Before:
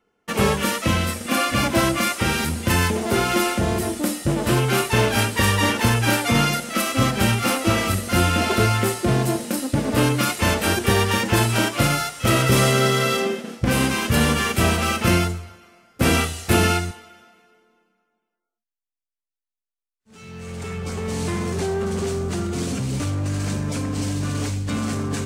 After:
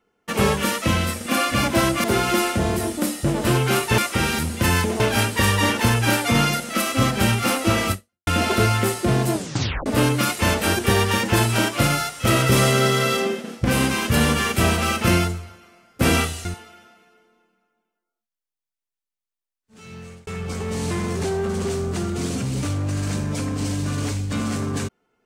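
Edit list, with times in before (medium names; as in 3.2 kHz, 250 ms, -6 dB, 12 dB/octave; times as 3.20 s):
2.04–3.06 s: move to 5.00 s
7.92–8.27 s: fade out exponential
9.33 s: tape stop 0.53 s
16.45–16.82 s: delete
20.32–20.64 s: fade out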